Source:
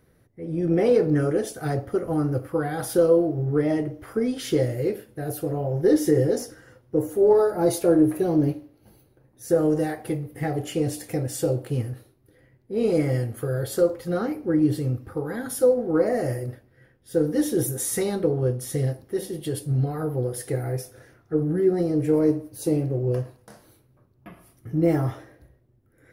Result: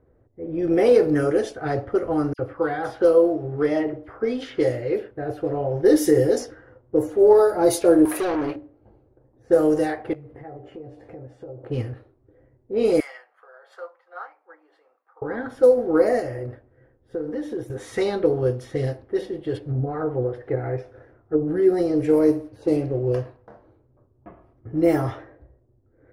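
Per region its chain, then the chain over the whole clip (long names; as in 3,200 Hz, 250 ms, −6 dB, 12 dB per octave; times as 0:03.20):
0:02.33–0:05.11: low-shelf EQ 320 Hz −4.5 dB + all-pass dispersion lows, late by 61 ms, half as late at 2,900 Hz
0:08.05–0:08.56: high-pass filter 1,100 Hz 6 dB per octave + leveller curve on the samples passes 3
0:10.13–0:11.64: downward compressor, threshold −38 dBFS + double-tracking delay 15 ms −8 dB
0:13.00–0:15.22: high-pass filter 920 Hz 24 dB per octave + expander for the loud parts, over −48 dBFS
0:16.19–0:17.70: high-shelf EQ 6,600 Hz +11 dB + downward compressor, threshold −27 dBFS
0:19.54–0:21.48: parametric band 11,000 Hz +12.5 dB 0.83 octaves + treble cut that deepens with the level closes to 700 Hz, closed at −18.5 dBFS
whole clip: low-pass that shuts in the quiet parts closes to 790 Hz, open at −16.5 dBFS; parametric band 170 Hz −12 dB 0.85 octaves; level +4.5 dB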